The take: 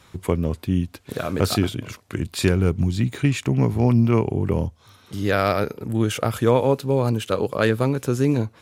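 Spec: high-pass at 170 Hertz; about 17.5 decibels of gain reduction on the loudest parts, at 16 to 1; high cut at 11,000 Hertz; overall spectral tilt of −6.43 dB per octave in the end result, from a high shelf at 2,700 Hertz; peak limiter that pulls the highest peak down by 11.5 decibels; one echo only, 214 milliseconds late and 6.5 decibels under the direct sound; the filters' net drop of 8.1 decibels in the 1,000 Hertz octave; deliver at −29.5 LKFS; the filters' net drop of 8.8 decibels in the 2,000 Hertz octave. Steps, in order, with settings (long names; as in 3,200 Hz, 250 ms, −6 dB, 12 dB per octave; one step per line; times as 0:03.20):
high-pass filter 170 Hz
low-pass filter 11,000 Hz
parametric band 1,000 Hz −8.5 dB
parametric band 2,000 Hz −5 dB
high-shelf EQ 2,700 Hz −8.5 dB
downward compressor 16 to 1, threshold −34 dBFS
brickwall limiter −31.5 dBFS
single-tap delay 214 ms −6.5 dB
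level +12.5 dB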